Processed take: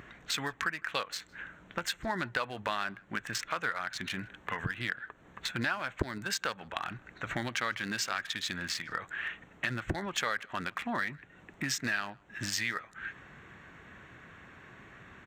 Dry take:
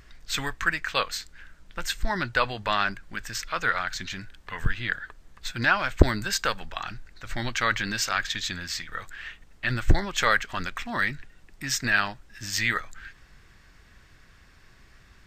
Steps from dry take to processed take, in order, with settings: Wiener smoothing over 9 samples; HPF 140 Hz 12 dB/oct; compressor 4:1, threshold -41 dBFS, peak gain reduction 23.5 dB; outdoor echo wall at 27 m, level -28 dB; gain +8 dB

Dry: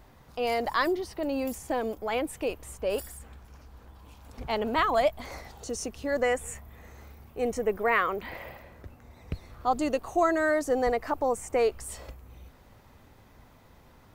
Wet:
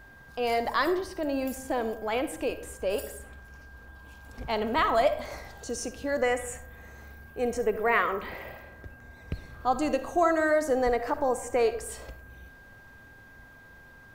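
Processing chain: digital reverb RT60 0.71 s, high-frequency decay 0.45×, pre-delay 15 ms, DRR 10.5 dB; whine 1600 Hz -51 dBFS

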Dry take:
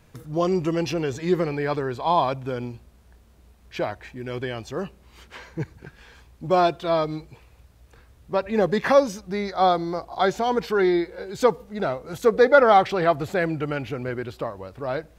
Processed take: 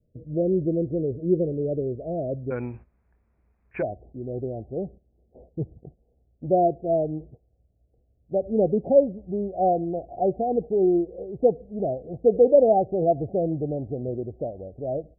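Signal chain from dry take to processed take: gate -43 dBFS, range -13 dB; steep low-pass 640 Hz 96 dB/oct, from 2.5 s 2500 Hz, from 3.81 s 740 Hz

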